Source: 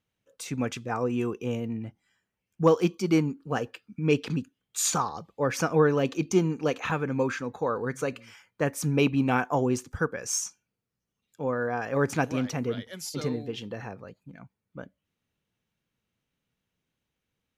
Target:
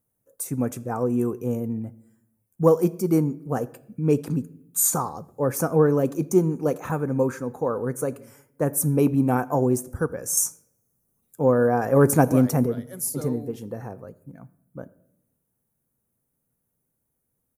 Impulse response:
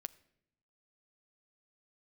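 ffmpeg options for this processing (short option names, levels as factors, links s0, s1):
-filter_complex "[0:a]firequalizer=gain_entry='entry(580,0);entry(2900,-20);entry(10000,13)':delay=0.05:min_phase=1,asettb=1/sr,asplit=3[s0][s1][s2];[s0]atrim=end=10.374[s3];[s1]atrim=start=10.37:end=12.66,asetpts=PTS-STARTPTS,afade=t=in:d=0.004:c=qsin,afade=t=out:st=2.286:d=0.004:c=qsin,acontrast=53[s4];[s2]atrim=start=12.656[s5];[s3][s4]acrossfade=d=0.004:c1=hsin:c2=qsin[s6];[s6][s5]acrossfade=d=0.004:c1=qsin:c2=hsin[s7];[1:a]atrim=start_sample=2205[s8];[s7][s8]afir=irnorm=-1:irlink=0,volume=2.37"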